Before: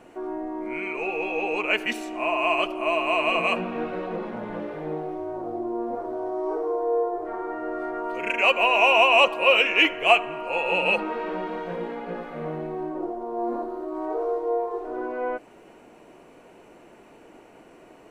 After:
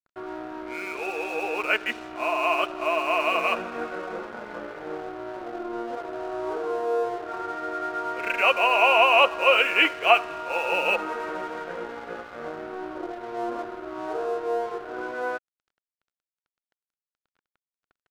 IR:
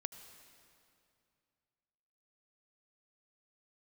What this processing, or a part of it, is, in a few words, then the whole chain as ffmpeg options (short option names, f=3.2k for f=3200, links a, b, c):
pocket radio on a weak battery: -af "highpass=310,lowpass=3.4k,aeval=exprs='sgn(val(0))*max(abs(val(0))-0.00794,0)':c=same,equalizer=f=1.4k:t=o:w=0.35:g=9.5"